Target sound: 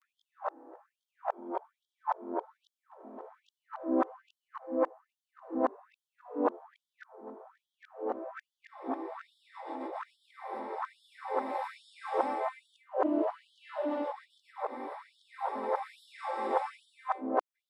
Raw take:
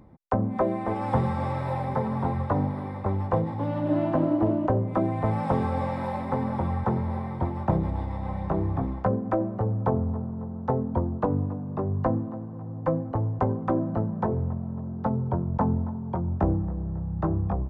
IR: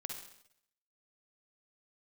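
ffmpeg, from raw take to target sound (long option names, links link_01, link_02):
-af "areverse,afftfilt=real='re*gte(b*sr/1024,220*pow(3100/220,0.5+0.5*sin(2*PI*1.2*pts/sr)))':imag='im*gte(b*sr/1024,220*pow(3100/220,0.5+0.5*sin(2*PI*1.2*pts/sr)))':win_size=1024:overlap=0.75,volume=-2dB"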